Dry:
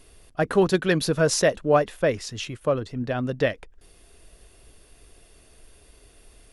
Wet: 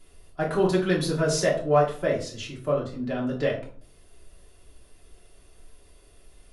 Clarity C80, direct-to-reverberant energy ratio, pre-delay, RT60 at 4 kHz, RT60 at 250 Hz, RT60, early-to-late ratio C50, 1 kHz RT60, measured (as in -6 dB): 12.5 dB, -4.0 dB, 3 ms, 0.30 s, 0.65 s, 0.50 s, 8.0 dB, 0.45 s